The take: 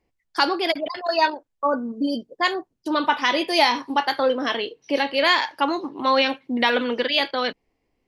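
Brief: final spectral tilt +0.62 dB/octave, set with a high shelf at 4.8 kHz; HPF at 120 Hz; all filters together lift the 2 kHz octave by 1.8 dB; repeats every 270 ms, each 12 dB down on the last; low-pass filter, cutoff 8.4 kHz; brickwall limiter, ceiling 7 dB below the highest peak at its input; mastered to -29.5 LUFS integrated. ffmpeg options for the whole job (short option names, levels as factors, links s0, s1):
-af "highpass=120,lowpass=8400,equalizer=f=2000:t=o:g=3,highshelf=f=4800:g=-5.5,alimiter=limit=0.266:level=0:latency=1,aecho=1:1:270|540|810:0.251|0.0628|0.0157,volume=0.531"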